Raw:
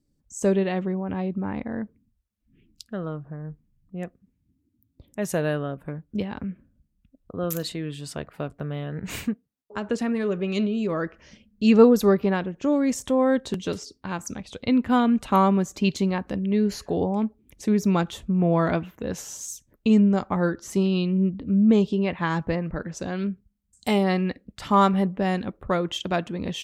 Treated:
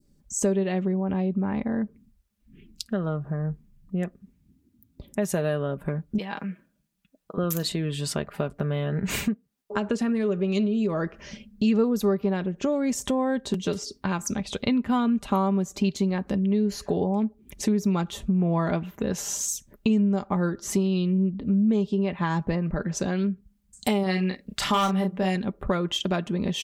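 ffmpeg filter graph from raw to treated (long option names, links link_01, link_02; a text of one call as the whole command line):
ffmpeg -i in.wav -filter_complex "[0:a]asettb=1/sr,asplit=3[link_01][link_02][link_03];[link_01]atrim=end=6.184[link_04];[link_02]atrim=start=6.18:end=7.38,asetpts=PTS-STARTPTS,afade=type=in:duration=0.004:curve=qsin,afade=type=out:start_time=1.196:duration=0.004:curve=qsin,highpass=frequency=850:poles=1,aecho=1:1:6.2:0.42,atrim=end_sample=52920[link_05];[link_03]atrim=start=7.376[link_06];[link_04][link_05]acrossfade=duration=0.004:curve1=hsin:curve2=qsin[link_07];[link_07][link_06]acrossfade=duration=0.004:curve1=qsin:curve2=hsin,asettb=1/sr,asplit=3[link_08][link_09][link_10];[link_08]atrim=end=24.034[link_11];[link_09]atrim=start=24.03:end=25.36,asetpts=PTS-STARTPTS,afade=type=in:duration=0.004:curve=qsin,afade=type=out:start_time=1.326:duration=0.004:curve=qsin,tiltshelf=frequency=780:gain=-4.5,aeval=exprs='0.211*(abs(mod(val(0)/0.211+3,4)-2)-1)':channel_layout=same,asplit=2[link_12][link_13];[link_13]adelay=32,volume=-5.5dB[link_14];[link_12][link_14]amix=inputs=2:normalize=0,atrim=end_sample=58653[link_15];[link_10]atrim=start=25.356[link_16];[link_11][link_15]acrossfade=duration=0.004:curve1=hsin:curve2=qsin[link_17];[link_17][link_16]acrossfade=duration=0.004:curve1=qsin:curve2=hsin,adynamicequalizer=threshold=0.00794:dfrequency=1900:dqfactor=0.78:tfrequency=1900:tqfactor=0.78:attack=5:release=100:ratio=0.375:range=2:mode=cutabove:tftype=bell,aecho=1:1:5:0.4,acompressor=threshold=-33dB:ratio=3,volume=8dB" out.wav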